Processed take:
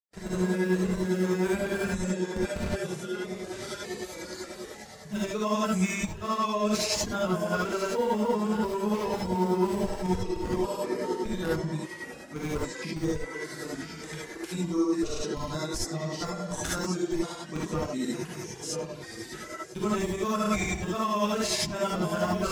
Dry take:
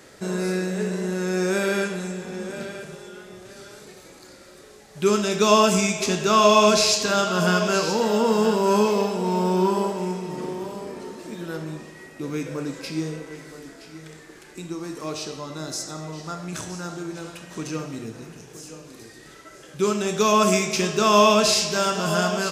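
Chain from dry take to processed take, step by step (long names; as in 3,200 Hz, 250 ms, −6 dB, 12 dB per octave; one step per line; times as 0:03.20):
dynamic equaliser 5,000 Hz, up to −7 dB, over −40 dBFS, Q 0.96
in parallel at −6 dB: comparator with hysteresis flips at −23.5 dBFS
on the sum: reverb reduction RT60 0.81 s
granular cloud, grains 10 per second, pitch spread up and down by 0 semitones
noise gate with hold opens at −47 dBFS
reversed playback
downward compressor 8 to 1, threshold −37 dBFS, peak gain reduction 23.5 dB
reversed playback
reverb whose tail is shaped and stops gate 90 ms rising, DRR −5.5 dB
level +5.5 dB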